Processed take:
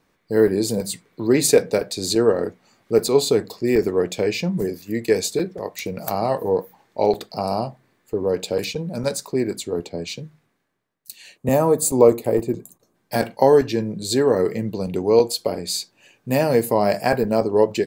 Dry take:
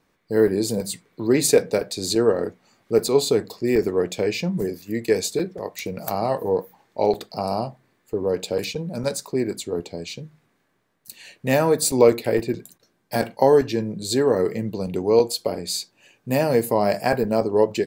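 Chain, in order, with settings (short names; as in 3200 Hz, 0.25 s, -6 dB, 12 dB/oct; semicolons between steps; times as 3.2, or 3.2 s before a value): 11.37–12.95 spectral gain 1300–6200 Hz -10 dB; 9.89–11.49 three-band expander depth 40%; gain +1.5 dB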